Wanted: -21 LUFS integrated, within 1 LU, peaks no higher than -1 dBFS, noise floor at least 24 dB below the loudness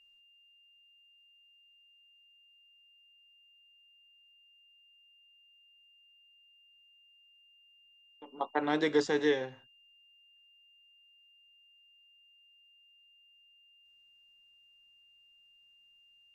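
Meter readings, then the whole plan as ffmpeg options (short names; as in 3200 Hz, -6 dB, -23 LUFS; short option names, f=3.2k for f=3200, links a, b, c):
steady tone 2800 Hz; tone level -61 dBFS; loudness -31.0 LUFS; peak -15.0 dBFS; loudness target -21.0 LUFS
-> -af "bandreject=f=2.8k:w=30"
-af "volume=10dB"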